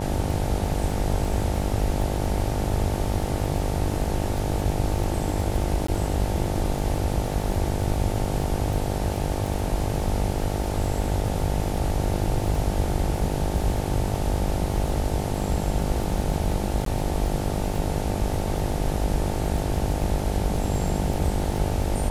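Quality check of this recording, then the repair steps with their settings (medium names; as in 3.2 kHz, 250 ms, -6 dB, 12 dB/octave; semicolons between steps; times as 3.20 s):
buzz 50 Hz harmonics 18 -29 dBFS
crackle 30 per s -30 dBFS
5.87–5.88 s: dropout 14 ms
16.85–16.86 s: dropout 13 ms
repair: de-click; de-hum 50 Hz, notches 18; interpolate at 5.87 s, 14 ms; interpolate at 16.85 s, 13 ms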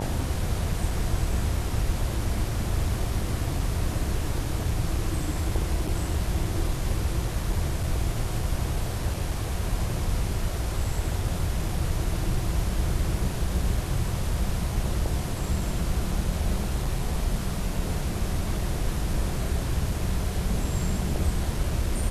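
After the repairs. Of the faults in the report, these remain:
nothing left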